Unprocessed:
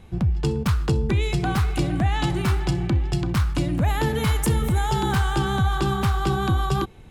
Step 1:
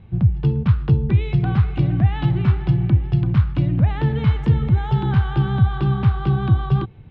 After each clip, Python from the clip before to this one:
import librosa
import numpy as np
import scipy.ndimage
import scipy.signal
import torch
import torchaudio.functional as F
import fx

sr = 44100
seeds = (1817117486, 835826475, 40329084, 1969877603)

y = scipy.signal.sosfilt(scipy.signal.butter(4, 3500.0, 'lowpass', fs=sr, output='sos'), x)
y = fx.peak_eq(y, sr, hz=120.0, db=14.0, octaves=1.3)
y = y * 10.0 ** (-4.5 / 20.0)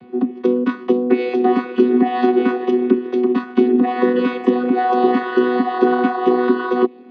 y = fx.chord_vocoder(x, sr, chord='bare fifth', root=59)
y = y * 10.0 ** (3.0 / 20.0)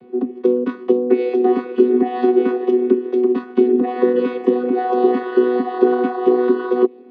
y = fx.peak_eq(x, sr, hz=430.0, db=10.5, octaves=1.0)
y = y * 10.0 ** (-7.0 / 20.0)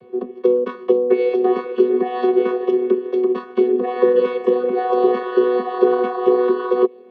y = x + 0.9 * np.pad(x, (int(1.8 * sr / 1000.0), 0))[:len(x)]
y = y * 10.0 ** (-1.0 / 20.0)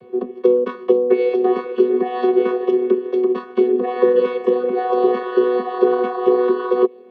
y = fx.rider(x, sr, range_db=3, speed_s=2.0)